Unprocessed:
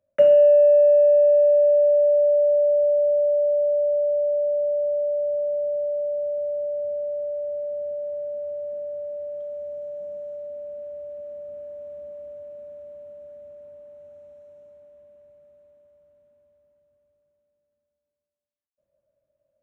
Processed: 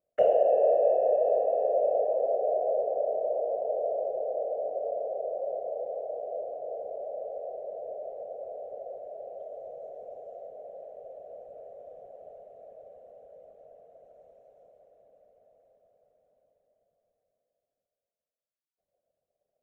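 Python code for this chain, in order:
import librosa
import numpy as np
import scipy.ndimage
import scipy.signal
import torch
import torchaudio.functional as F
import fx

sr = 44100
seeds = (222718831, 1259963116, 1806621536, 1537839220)

y = fx.whisperise(x, sr, seeds[0])
y = y * 10.0 ** (-9.0 / 20.0)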